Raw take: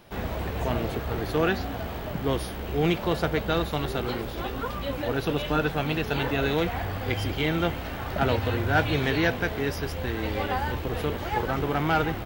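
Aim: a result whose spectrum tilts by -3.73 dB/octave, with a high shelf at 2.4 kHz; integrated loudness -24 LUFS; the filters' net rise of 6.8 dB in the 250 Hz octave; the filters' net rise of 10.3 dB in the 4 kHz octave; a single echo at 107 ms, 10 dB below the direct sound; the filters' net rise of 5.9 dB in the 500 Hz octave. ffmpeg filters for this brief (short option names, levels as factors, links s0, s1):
-af "equalizer=f=250:t=o:g=7.5,equalizer=f=500:t=o:g=4.5,highshelf=f=2400:g=7,equalizer=f=4000:t=o:g=7,aecho=1:1:107:0.316,volume=0.75"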